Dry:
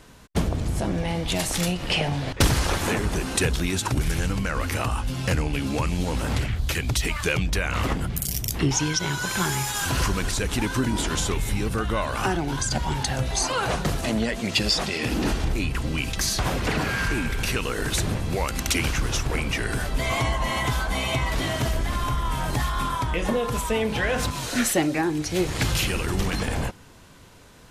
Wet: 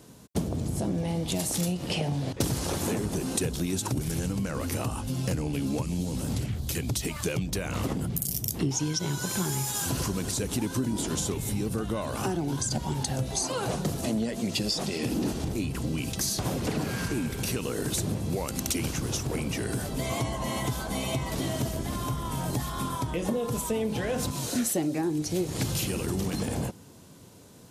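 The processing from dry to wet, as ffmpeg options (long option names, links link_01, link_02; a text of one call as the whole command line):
ffmpeg -i in.wav -filter_complex "[0:a]asettb=1/sr,asplit=3[link_01][link_02][link_03];[link_01]atrim=end=5.824[link_04];[link_02]atrim=start=5.82:end=6.75,asetpts=PTS-STARTPTS,afade=type=in:duration=0.004:curve=qsin,afade=type=out:start_time=0.926:duration=0.004:curve=qsin,acrossover=split=270|3000[link_05][link_06][link_07];[link_06]acompressor=threshold=-34dB:ratio=6:attack=3.2:release=140:knee=2.83:detection=peak[link_08];[link_05][link_08][link_07]amix=inputs=3:normalize=0[link_09];[link_03]atrim=start=6.746[link_10];[link_04][link_09]acrossfade=duration=0.004:curve1=hsin:curve2=qsin[link_11];[link_11][link_10]acrossfade=duration=0.004:curve1=qsin:curve2=hsin,highpass=120,equalizer=frequency=1800:width_type=o:width=2.6:gain=-13.5,acompressor=threshold=-30dB:ratio=2.5,volume=3.5dB" out.wav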